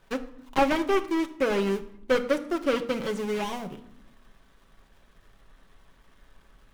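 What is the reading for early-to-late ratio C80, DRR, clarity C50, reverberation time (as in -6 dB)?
17.0 dB, 5.0 dB, 14.0 dB, 0.80 s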